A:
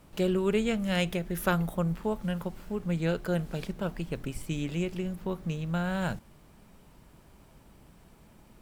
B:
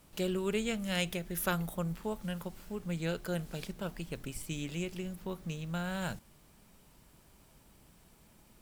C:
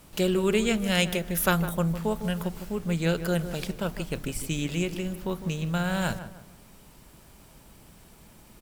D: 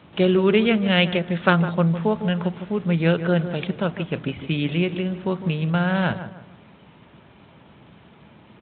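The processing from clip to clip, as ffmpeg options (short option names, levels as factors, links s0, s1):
-af "highshelf=f=2900:g=9.5,volume=0.473"
-filter_complex "[0:a]asplit=2[s0][s1];[s1]adelay=155,lowpass=f=1600:p=1,volume=0.282,asplit=2[s2][s3];[s3]adelay=155,lowpass=f=1600:p=1,volume=0.39,asplit=2[s4][s5];[s5]adelay=155,lowpass=f=1600:p=1,volume=0.39,asplit=2[s6][s7];[s7]adelay=155,lowpass=f=1600:p=1,volume=0.39[s8];[s0][s2][s4][s6][s8]amix=inputs=5:normalize=0,volume=2.66"
-af "volume=2" -ar 8000 -c:a libspeex -b:a 24k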